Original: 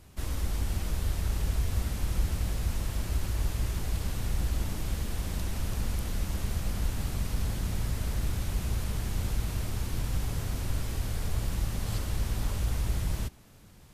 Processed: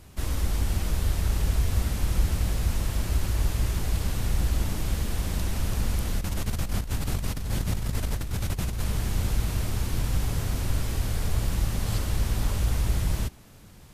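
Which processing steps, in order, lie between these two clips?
0:06.19–0:08.82: compressor whose output falls as the input rises −31 dBFS, ratio −0.5
level +4.5 dB

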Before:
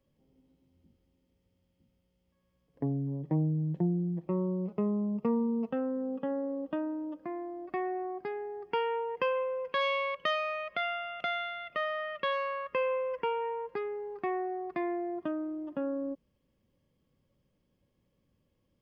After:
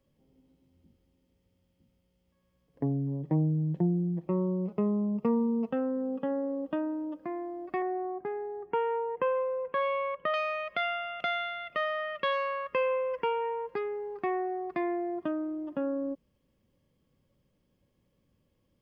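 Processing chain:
0:07.82–0:10.34: low-pass filter 1,500 Hz 12 dB per octave
level +2 dB

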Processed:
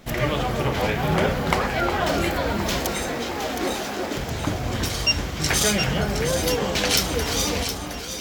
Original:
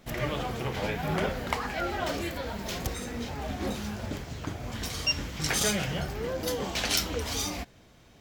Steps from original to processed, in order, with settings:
0:02.80–0:04.17: Chebyshev high-pass filter 300 Hz, order 3
in parallel at −2.5 dB: speech leveller within 4 dB 0.5 s
on the sum: delay that swaps between a low-pass and a high-pass 358 ms, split 1,600 Hz, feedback 74%, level −5.5 dB
level +2.5 dB

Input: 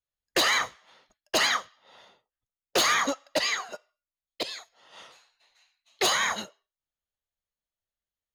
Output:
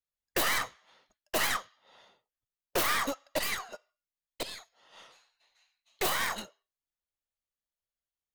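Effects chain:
stylus tracing distortion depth 0.26 ms
level −5 dB

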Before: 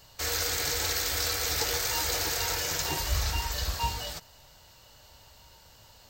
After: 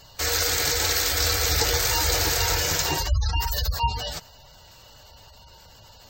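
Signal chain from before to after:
0:03.37–0:03.78: high-shelf EQ 12,000 Hz +8.5 dB
gate on every frequency bin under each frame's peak −20 dB strong
0:01.20–0:02.75: low-shelf EQ 160 Hz +6.5 dB
level +6.5 dB

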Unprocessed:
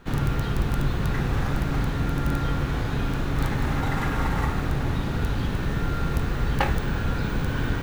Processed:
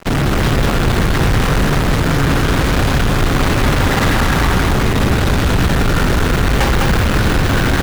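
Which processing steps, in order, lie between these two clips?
notch filter 850 Hz, Q 20
fuzz pedal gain 37 dB, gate −45 dBFS
single-tap delay 204 ms −4 dB

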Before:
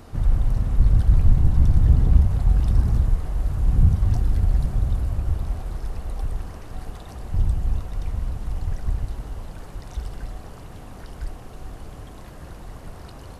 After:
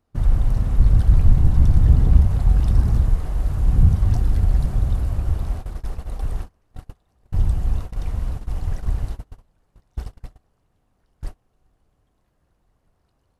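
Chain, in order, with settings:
noise gate −27 dBFS, range −30 dB
level +2 dB

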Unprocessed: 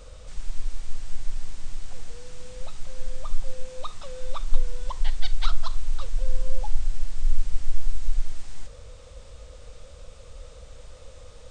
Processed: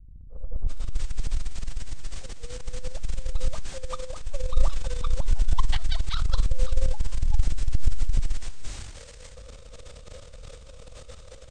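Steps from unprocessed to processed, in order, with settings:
three-band delay without the direct sound lows, mids, highs 300/680 ms, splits 170/860 Hz
transient designer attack −6 dB, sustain +11 dB
level −2.5 dB

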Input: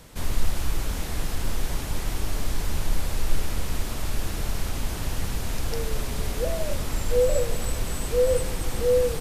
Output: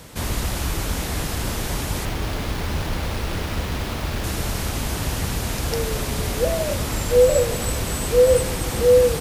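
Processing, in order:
high-pass filter 52 Hz
0:02.05–0:04.24: windowed peak hold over 5 samples
level +7 dB

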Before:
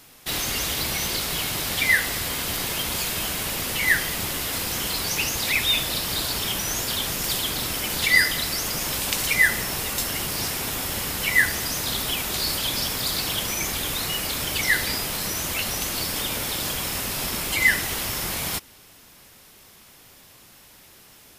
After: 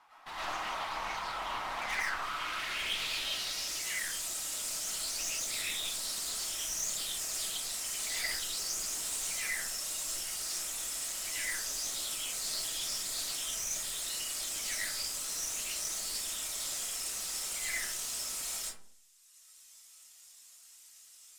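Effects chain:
reverb reduction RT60 1.7 s
band-pass filter sweep 940 Hz → 7,600 Hz, 0:01.91–0:03.83
low shelf with overshoot 670 Hz −7.5 dB, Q 1.5
tube saturation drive 41 dB, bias 0.55
comb and all-pass reverb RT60 0.57 s, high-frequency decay 0.45×, pre-delay 70 ms, DRR −7.5 dB
highs frequency-modulated by the lows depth 0.18 ms
level +2 dB

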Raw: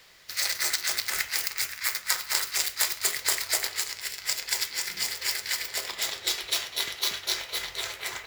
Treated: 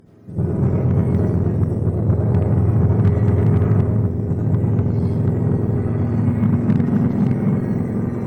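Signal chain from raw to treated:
frequency axis turned over on the octave scale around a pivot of 890 Hz
comb and all-pass reverb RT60 1.3 s, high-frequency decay 0.5×, pre-delay 45 ms, DRR −6 dB
harmonic generator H 8 −25 dB, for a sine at −7 dBFS

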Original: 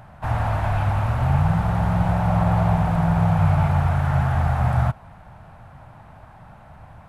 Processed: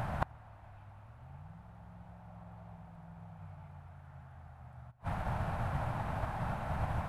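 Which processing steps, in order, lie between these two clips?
gate with flip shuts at −24 dBFS, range −36 dB
spring reverb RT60 3.8 s, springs 41 ms, DRR 18.5 dB
expander for the loud parts 1.5 to 1, over −53 dBFS
level +10.5 dB

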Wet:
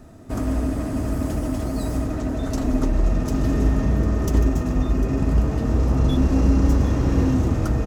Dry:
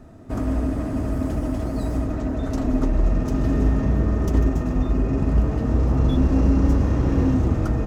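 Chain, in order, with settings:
high-shelf EQ 3,900 Hz +9 dB
on a send: single-tap delay 750 ms −14.5 dB

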